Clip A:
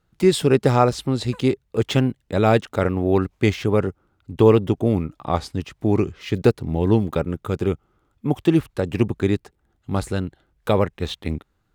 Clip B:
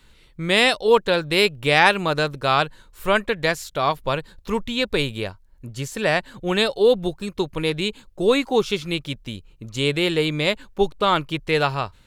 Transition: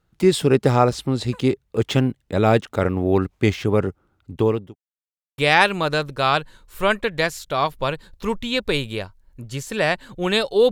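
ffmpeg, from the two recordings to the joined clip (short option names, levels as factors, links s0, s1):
-filter_complex "[0:a]apad=whole_dur=10.71,atrim=end=10.71,asplit=2[s0][s1];[s0]atrim=end=4.76,asetpts=PTS-STARTPTS,afade=t=out:st=4.21:d=0.55[s2];[s1]atrim=start=4.76:end=5.38,asetpts=PTS-STARTPTS,volume=0[s3];[1:a]atrim=start=1.63:end=6.96,asetpts=PTS-STARTPTS,afade=t=in:d=0.004:c=hsin[s4];[s2][s3][s4]concat=n=3:v=0:a=1"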